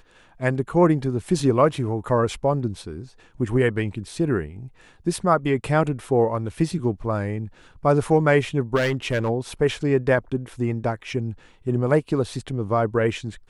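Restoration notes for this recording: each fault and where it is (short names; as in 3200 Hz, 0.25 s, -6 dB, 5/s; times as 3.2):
8.75–9.3 clipped -17.5 dBFS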